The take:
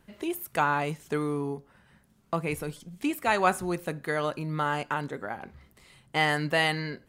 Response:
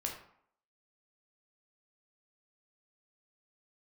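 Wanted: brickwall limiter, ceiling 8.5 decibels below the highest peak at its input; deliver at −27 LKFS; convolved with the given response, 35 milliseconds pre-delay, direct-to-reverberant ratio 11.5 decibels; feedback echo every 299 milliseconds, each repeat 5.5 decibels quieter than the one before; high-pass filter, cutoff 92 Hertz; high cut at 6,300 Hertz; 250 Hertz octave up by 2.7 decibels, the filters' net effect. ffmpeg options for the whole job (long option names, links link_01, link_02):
-filter_complex "[0:a]highpass=92,lowpass=6300,equalizer=frequency=250:width_type=o:gain=4,alimiter=limit=-17dB:level=0:latency=1,aecho=1:1:299|598|897|1196|1495|1794|2093:0.531|0.281|0.149|0.079|0.0419|0.0222|0.0118,asplit=2[link_01][link_02];[1:a]atrim=start_sample=2205,adelay=35[link_03];[link_02][link_03]afir=irnorm=-1:irlink=0,volume=-12.5dB[link_04];[link_01][link_04]amix=inputs=2:normalize=0,volume=2.5dB"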